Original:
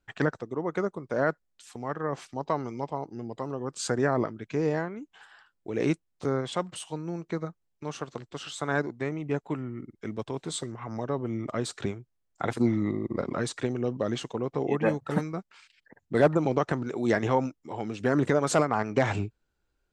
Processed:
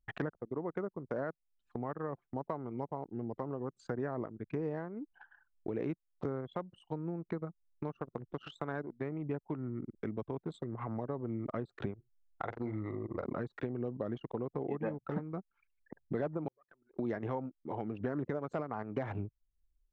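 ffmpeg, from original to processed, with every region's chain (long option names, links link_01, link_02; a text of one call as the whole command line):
ffmpeg -i in.wav -filter_complex "[0:a]asettb=1/sr,asplit=3[link_01][link_02][link_03];[link_01]atrim=end=11.944[link_04];[link_02]atrim=start=11.94:end=13.25,asetpts=PTS-STARTPTS,afade=type=in:duration=0.004:curve=qsin,afade=type=out:start_time=1.306:duration=0.004:curve=qsin,equalizer=frequency=210:width=0.76:gain=-12,asplit=2[link_05][link_06];[link_06]adelay=46,volume=-8.5dB[link_07];[link_05][link_07]amix=inputs=2:normalize=0,atrim=end_sample=57771[link_08];[link_03]atrim=start=13.246[link_09];[link_04][link_08]acrossfade=duration=0.004:curve1=hsin:curve2=qsin[link_10];[link_10][link_09]acrossfade=duration=0.004:curve1=qsin:curve2=hsin,asettb=1/sr,asplit=3[link_11][link_12][link_13];[link_11]atrim=end=16.484[link_14];[link_12]atrim=start=16.48:end=16.99,asetpts=PTS-STARTPTS,afade=type=in:duration=0.004:curve=qsin,afade=type=out:start_time=0.506:duration=0.004:curve=qsin,aeval=exprs='if(lt(val(0),0),0.447*val(0),val(0))':channel_layout=same,aderivative[link_15];[link_13]atrim=start=16.986[link_16];[link_14][link_15]acrossfade=duration=0.004:curve1=hsin:curve2=qsin[link_17];[link_17][link_16]acrossfade=duration=0.004:curve1=qsin:curve2=hsin,acompressor=threshold=-42dB:ratio=4,lowpass=frequency=1400:poles=1,anlmdn=0.00398,volume=6dB" out.wav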